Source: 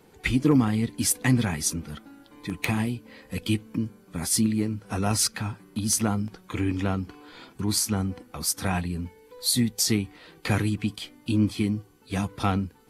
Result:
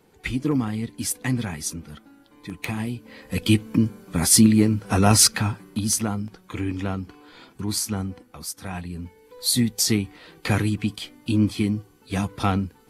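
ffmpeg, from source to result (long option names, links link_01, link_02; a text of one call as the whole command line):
ffmpeg -i in.wav -af "volume=19.5dB,afade=type=in:start_time=2.77:duration=0.96:silence=0.266073,afade=type=out:start_time=5.25:duration=0.81:silence=0.334965,afade=type=out:start_time=8:duration=0.6:silence=0.421697,afade=type=in:start_time=8.6:duration=0.95:silence=0.281838" out.wav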